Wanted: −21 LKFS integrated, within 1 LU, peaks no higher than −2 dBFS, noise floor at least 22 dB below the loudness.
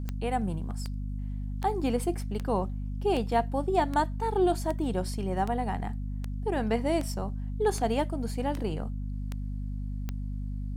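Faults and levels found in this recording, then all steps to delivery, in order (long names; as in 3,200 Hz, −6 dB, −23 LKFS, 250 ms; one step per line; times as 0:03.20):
number of clicks 14; mains hum 50 Hz; hum harmonics up to 250 Hz; level of the hum −31 dBFS; integrated loudness −31.0 LKFS; sample peak −14.0 dBFS; target loudness −21.0 LKFS
→ click removal
hum removal 50 Hz, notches 5
level +10 dB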